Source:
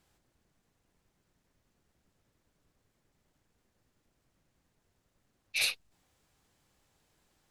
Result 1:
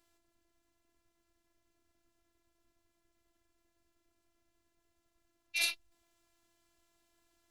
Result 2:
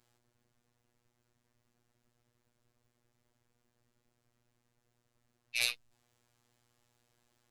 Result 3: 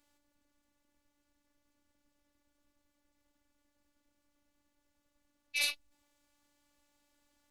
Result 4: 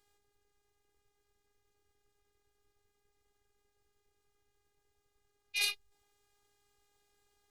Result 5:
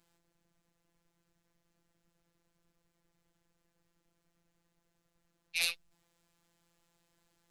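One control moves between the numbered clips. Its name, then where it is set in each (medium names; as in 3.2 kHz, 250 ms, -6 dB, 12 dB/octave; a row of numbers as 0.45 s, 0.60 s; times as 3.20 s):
robot voice, frequency: 340 Hz, 120 Hz, 290 Hz, 410 Hz, 170 Hz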